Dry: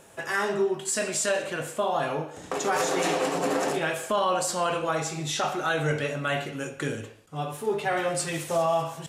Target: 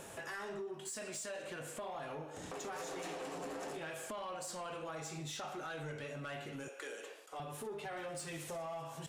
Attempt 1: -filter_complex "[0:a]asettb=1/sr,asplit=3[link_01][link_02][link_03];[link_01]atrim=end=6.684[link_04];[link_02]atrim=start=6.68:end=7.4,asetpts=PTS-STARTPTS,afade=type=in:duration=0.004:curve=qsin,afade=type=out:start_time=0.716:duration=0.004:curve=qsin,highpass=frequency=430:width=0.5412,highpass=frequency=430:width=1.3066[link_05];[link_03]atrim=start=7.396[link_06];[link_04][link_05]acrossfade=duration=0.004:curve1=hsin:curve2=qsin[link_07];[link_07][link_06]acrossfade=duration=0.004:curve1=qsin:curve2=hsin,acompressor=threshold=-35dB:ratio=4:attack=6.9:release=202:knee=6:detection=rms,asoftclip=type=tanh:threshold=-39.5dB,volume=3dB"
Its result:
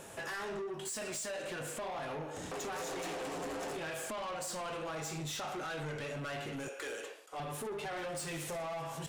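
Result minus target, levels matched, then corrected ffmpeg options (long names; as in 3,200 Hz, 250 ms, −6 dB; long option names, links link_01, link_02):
downward compressor: peak gain reduction −7.5 dB
-filter_complex "[0:a]asettb=1/sr,asplit=3[link_01][link_02][link_03];[link_01]atrim=end=6.684[link_04];[link_02]atrim=start=6.68:end=7.4,asetpts=PTS-STARTPTS,afade=type=in:duration=0.004:curve=qsin,afade=type=out:start_time=0.716:duration=0.004:curve=qsin,highpass=frequency=430:width=0.5412,highpass=frequency=430:width=1.3066[link_05];[link_03]atrim=start=7.396[link_06];[link_04][link_05]acrossfade=duration=0.004:curve1=hsin:curve2=qsin[link_07];[link_07][link_06]acrossfade=duration=0.004:curve1=qsin:curve2=hsin,acompressor=threshold=-45dB:ratio=4:attack=6.9:release=202:knee=6:detection=rms,asoftclip=type=tanh:threshold=-39.5dB,volume=3dB"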